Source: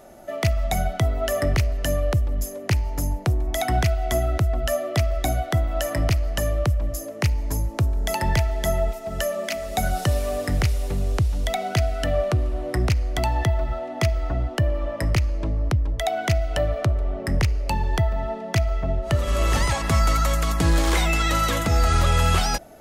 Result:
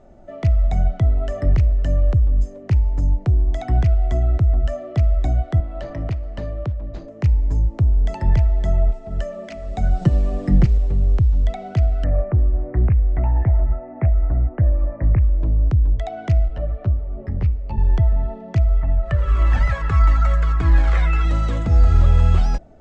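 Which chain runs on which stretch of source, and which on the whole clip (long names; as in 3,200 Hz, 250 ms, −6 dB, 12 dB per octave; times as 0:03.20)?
0:05.60–0:07.08: high-pass filter 190 Hz 6 dB per octave + linearly interpolated sample-rate reduction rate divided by 4×
0:10.01–0:10.78: parametric band 230 Hz +9.5 dB 1.4 octaves + comb filter 5.8 ms, depth 72%
0:12.04–0:15.43: Butterworth low-pass 2,300 Hz 48 dB per octave + highs frequency-modulated by the lows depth 0.24 ms
0:16.48–0:17.78: high-frequency loss of the air 170 metres + string-ensemble chorus
0:18.81–0:21.25: parametric band 1,600 Hz +14 dB 1.8 octaves + flanger whose copies keep moving one way falling 1.6 Hz
whole clip: elliptic low-pass filter 8,100 Hz, stop band 60 dB; spectral tilt −3.5 dB per octave; level −6.5 dB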